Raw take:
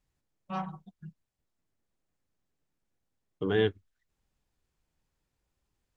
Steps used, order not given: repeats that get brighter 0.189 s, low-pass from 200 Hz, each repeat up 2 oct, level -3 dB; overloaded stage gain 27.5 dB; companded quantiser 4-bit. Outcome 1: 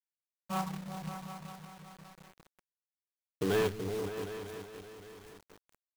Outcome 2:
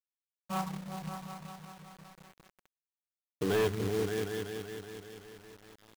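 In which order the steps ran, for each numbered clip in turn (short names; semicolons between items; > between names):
overloaded stage > repeats that get brighter > companded quantiser; repeats that get brighter > overloaded stage > companded quantiser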